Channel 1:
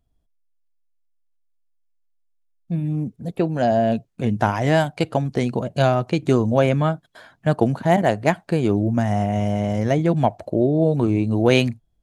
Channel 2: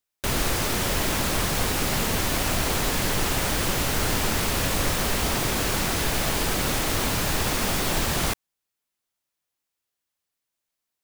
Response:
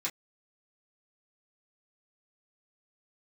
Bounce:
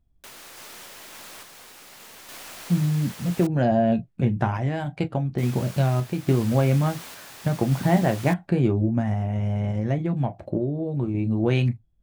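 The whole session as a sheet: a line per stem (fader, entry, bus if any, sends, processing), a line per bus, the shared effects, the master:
−3.0 dB, 0.00 s, send −7.5 dB, bass and treble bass +10 dB, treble −9 dB; downward compressor, threshold −13 dBFS, peak gain reduction 7 dB
−12.5 dB, 0.00 s, muted 0:03.47–0:05.38, no send, high-pass filter 800 Hz 6 dB per octave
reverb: on, pre-delay 3 ms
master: sample-and-hold tremolo

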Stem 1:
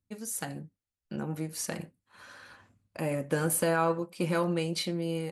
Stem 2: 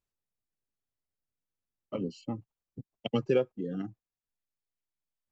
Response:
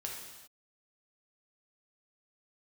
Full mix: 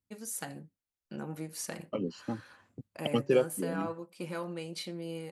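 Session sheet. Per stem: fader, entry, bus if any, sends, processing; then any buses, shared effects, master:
−7.0 dB, 0.00 s, no send, speech leveller 0.5 s
+1.5 dB, 0.00 s, no send, noise gate −47 dBFS, range −16 dB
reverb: not used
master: low-shelf EQ 130 Hz −7.5 dB

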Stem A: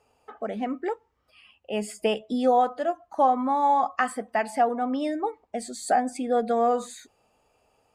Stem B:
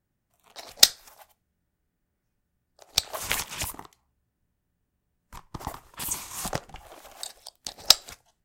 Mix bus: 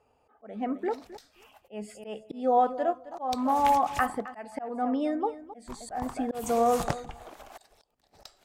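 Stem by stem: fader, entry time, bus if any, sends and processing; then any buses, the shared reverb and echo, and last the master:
−0.5 dB, 0.00 s, no send, echo send −15.5 dB, no processing
−5.5 dB, 0.35 s, no send, no echo send, notch filter 520 Hz; automatic gain control gain up to 9 dB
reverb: not used
echo: repeating echo 264 ms, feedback 17%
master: high-shelf EQ 2,700 Hz −10 dB; volume swells 257 ms

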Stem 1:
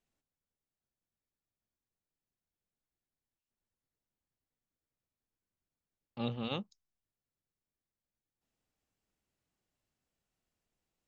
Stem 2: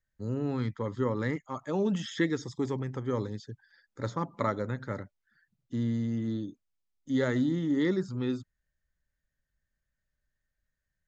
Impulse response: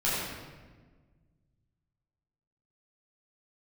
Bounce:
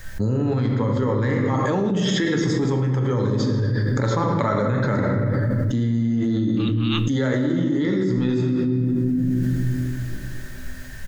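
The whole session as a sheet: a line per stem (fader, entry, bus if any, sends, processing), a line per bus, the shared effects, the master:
−7.0 dB, 0.40 s, send −23.5 dB, Butterworth high-pass 1,100 Hz
+2.0 dB, 0.00 s, send −10 dB, downward compressor 2 to 1, threshold −34 dBFS, peak gain reduction 7 dB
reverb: on, RT60 1.4 s, pre-delay 9 ms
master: envelope flattener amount 100%

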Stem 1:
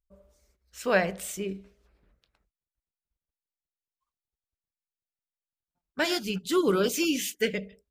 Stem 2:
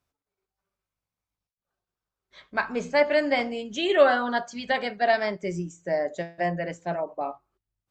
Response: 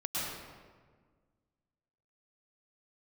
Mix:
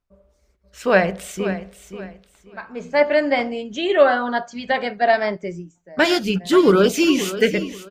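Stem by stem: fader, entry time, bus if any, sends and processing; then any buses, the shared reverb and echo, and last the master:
+2.5 dB, 0.00 s, no send, echo send −13 dB, high-shelf EQ 9,400 Hz −5.5 dB
−3.0 dB, 0.00 s, no send, no echo send, automatic ducking −22 dB, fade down 0.60 s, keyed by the first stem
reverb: not used
echo: repeating echo 533 ms, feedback 23%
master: high-shelf EQ 4,100 Hz −7 dB; automatic gain control gain up to 9 dB

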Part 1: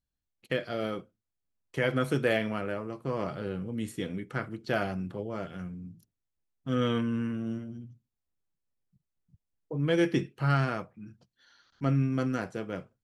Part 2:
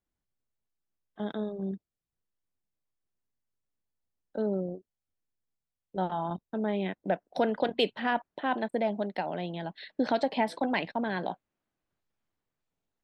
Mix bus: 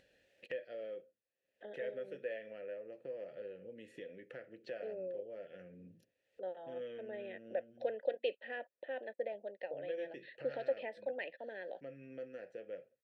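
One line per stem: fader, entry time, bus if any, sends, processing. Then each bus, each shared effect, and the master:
+2.5 dB, 0.00 s, no send, downward compressor 2.5 to 1, threshold −39 dBFS, peak gain reduction 12.5 dB
−1.5 dB, 0.45 s, no send, high-pass filter 250 Hz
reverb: not used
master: formant filter e; upward compression, threshold −44 dBFS

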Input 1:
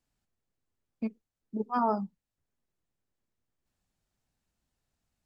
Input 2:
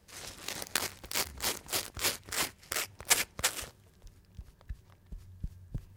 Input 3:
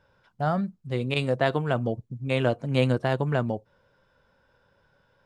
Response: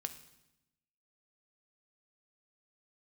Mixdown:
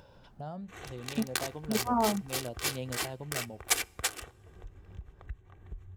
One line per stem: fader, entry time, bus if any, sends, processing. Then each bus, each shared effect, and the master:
+1.5 dB, 0.15 s, no send, low-pass filter 1,000 Hz 12 dB per octave
−3.0 dB, 0.60 s, send −15.5 dB, adaptive Wiener filter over 9 samples; comb filter 2.6 ms, depth 47%
−16.0 dB, 0.00 s, no send, flat-topped bell 1,600 Hz −8 dB 1.2 octaves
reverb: on, RT60 0.90 s, pre-delay 3 ms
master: upward compression, threshold −37 dBFS

